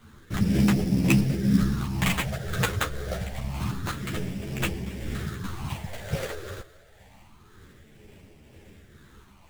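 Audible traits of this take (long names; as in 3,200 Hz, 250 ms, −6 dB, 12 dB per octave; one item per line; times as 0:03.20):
phaser sweep stages 6, 0.27 Hz, lowest notch 230–1,300 Hz
aliases and images of a low sample rate 5,300 Hz, jitter 20%
tremolo triangle 2 Hz, depth 40%
a shimmering, thickened sound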